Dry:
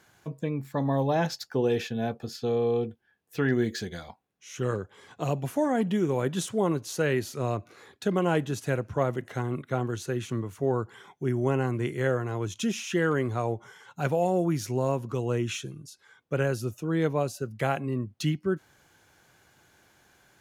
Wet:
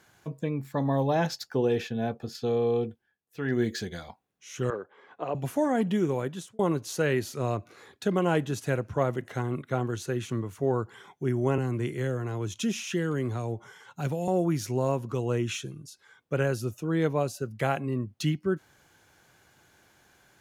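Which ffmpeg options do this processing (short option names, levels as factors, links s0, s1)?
-filter_complex "[0:a]asettb=1/sr,asplit=3[s0][s1][s2];[s0]atrim=end=1.654[s3];[s1]atrim=start=1.65:end=2.35,asetpts=PTS-STARTPTS,afade=t=in:d=0.004:c=qsin,afade=t=out:st=0.696:d=0.004:c=qsin,equalizer=f=12000:t=o:w=2.9:g=-4[s4];[s2]atrim=start=2.346[s5];[s3][s4]acrossfade=d=0.004:c1=hsin:c2=qsin[s6];[s6][s5]acrossfade=d=0.004:c1=qsin:c2=hsin,asettb=1/sr,asplit=3[s7][s8][s9];[s7]atrim=end=4.704[s10];[s8]atrim=start=4.7:end=5.35,asetpts=PTS-STARTPTS,afade=t=in:d=0.004:c=qsin,afade=t=out:st=0.646:d=0.004:c=qsin,highpass=350,lowpass=2000[s11];[s9]atrim=start=5.346[s12];[s10][s11]acrossfade=d=0.004:c1=hsin:c2=qsin[s13];[s13][s12]acrossfade=d=0.004:c1=qsin:c2=hsin,asettb=1/sr,asplit=3[s14][s15][s16];[s14]atrim=end=11.584[s17];[s15]atrim=start=11.58:end=14.28,asetpts=PTS-STARTPTS,afade=t=in:d=0.004:c=qsin,afade=t=out:st=2.696:d=0.004:c=qsin,acrossover=split=360|3000[s18][s19][s20];[s19]acompressor=threshold=0.0178:ratio=6:attack=3.2:release=140:knee=2.83:detection=peak[s21];[s18][s21][s20]amix=inputs=3:normalize=0[s22];[s16]atrim=start=14.276[s23];[s17][s22]acrossfade=d=0.004:c1=hsin:c2=qsin[s24];[s24][s23]acrossfade=d=0.004:c1=qsin:c2=hsin,asplit=4[s25][s26][s27][s28];[s25]atrim=end=3.18,asetpts=PTS-STARTPTS,afade=t=out:st=2.89:d=0.29:silence=0.237137[s29];[s26]atrim=start=3.18:end=3.33,asetpts=PTS-STARTPTS,volume=0.237[s30];[s27]atrim=start=3.33:end=6.59,asetpts=PTS-STARTPTS,afade=t=in:d=0.29:silence=0.237137,afade=t=out:st=2.72:d=0.54[s31];[s28]atrim=start=6.59,asetpts=PTS-STARTPTS,afade=t=in:d=0.004:c=hsin[s32];[s29][s30][s31][s32]concat=n=4:v=0:a=1"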